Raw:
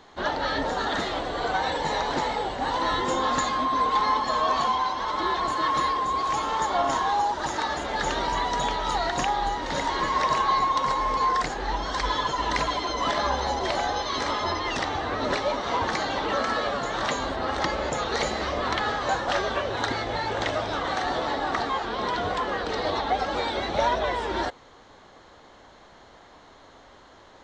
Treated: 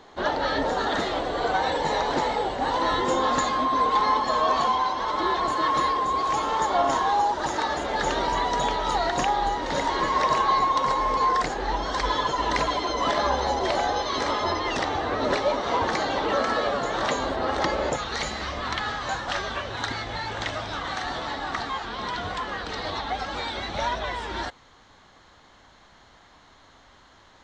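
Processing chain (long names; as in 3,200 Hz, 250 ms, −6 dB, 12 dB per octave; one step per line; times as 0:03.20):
parametric band 470 Hz +3.5 dB 1.7 octaves, from 0:17.96 −8 dB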